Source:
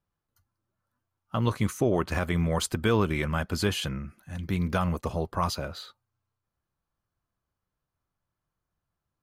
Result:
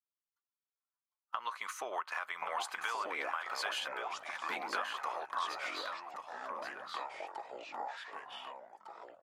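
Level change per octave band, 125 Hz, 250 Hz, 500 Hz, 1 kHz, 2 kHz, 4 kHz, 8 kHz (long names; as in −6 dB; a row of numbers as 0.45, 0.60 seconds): below −40 dB, −27.0 dB, −14.0 dB, −2.0 dB, −2.5 dB, −5.5 dB, −10.0 dB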